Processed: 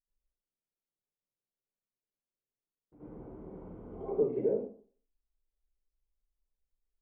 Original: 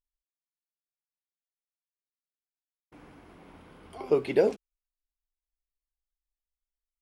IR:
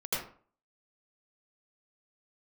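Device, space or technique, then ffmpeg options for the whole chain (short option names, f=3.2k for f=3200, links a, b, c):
television next door: -filter_complex "[0:a]acompressor=threshold=-37dB:ratio=3,lowpass=510[a];[1:a]atrim=start_sample=2205[b];[a][b]afir=irnorm=-1:irlink=0,asettb=1/sr,asplit=3[c][d][e];[c]atrim=end=3.154[f];[d]atrim=start=3.15:end=4.01,asetpts=PTS-STARTPTS,afade=t=in:d=0.004:c=qsin,afade=t=out:st=0.856:d=0.004:c=qsin,asplit=2[g][h];[h]adelay=45,volume=-4.5dB[i];[g][i]amix=inputs=2:normalize=0,atrim=end_sample=37926[j];[e]atrim=start=4.006[k];[f][j]acrossfade=d=0.004:c1=hsin:c2=qsin[l];[l][k]acrossfade=d=0.004:c1=qsin:c2=hsin"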